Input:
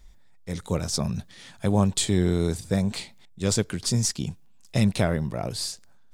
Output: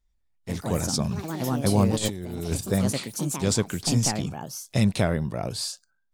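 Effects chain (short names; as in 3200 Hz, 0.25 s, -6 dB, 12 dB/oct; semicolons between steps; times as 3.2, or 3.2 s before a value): echoes that change speed 98 ms, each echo +4 st, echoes 3, each echo -6 dB; spectral noise reduction 22 dB; 1.93–2.61 negative-ratio compressor -27 dBFS, ratio -0.5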